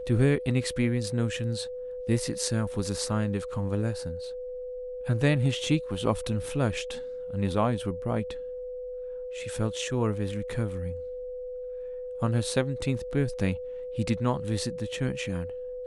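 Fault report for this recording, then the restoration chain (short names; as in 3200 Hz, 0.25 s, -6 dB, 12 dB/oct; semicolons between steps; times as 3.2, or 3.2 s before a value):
tone 500 Hz -34 dBFS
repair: notch 500 Hz, Q 30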